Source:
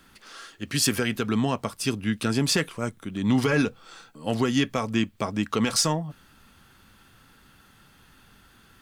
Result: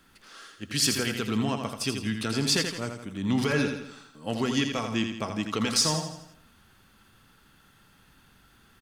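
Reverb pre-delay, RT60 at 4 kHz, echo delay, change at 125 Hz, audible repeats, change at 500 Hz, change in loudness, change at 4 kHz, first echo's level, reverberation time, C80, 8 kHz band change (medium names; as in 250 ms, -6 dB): no reverb, no reverb, 83 ms, -3.5 dB, 5, -3.0 dB, -2.0 dB, +1.0 dB, -6.5 dB, no reverb, no reverb, -0.5 dB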